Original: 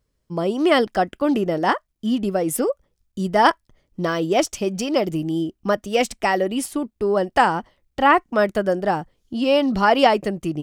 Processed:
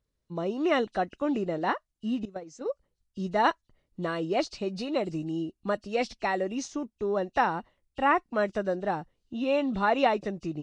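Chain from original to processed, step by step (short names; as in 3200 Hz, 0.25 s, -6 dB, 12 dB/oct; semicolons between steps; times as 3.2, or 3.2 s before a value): nonlinear frequency compression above 2500 Hz 1.5:1; 2.25–2.66 gate -18 dBFS, range -16 dB; gain -8.5 dB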